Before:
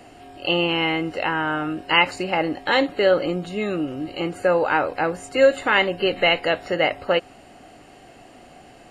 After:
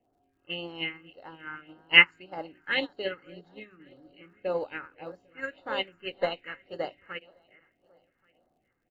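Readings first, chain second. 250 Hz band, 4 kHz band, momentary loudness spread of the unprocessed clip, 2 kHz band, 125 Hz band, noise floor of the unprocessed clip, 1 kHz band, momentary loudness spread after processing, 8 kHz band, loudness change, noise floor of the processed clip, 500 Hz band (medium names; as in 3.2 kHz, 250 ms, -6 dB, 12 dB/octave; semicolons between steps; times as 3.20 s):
-17.0 dB, -5.5 dB, 8 LU, -4.5 dB, -16.0 dB, -48 dBFS, -16.0 dB, 25 LU, under -25 dB, -6.0 dB, -75 dBFS, -15.0 dB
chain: backward echo that repeats 400 ms, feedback 45%, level -11 dB; phase shifter stages 4, 1.8 Hz, lowest notch 600–2500 Hz; tone controls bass -2 dB, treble -11 dB; level-controlled noise filter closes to 1.1 kHz, open at -18 dBFS; resampled via 16 kHz; treble shelf 2.3 kHz +11.5 dB; hum notches 50/100/150/200/250/300/350/400 Hz; delay 1130 ms -20.5 dB; crackle 100 per s -44 dBFS; upward expansion 2.5:1, over -28 dBFS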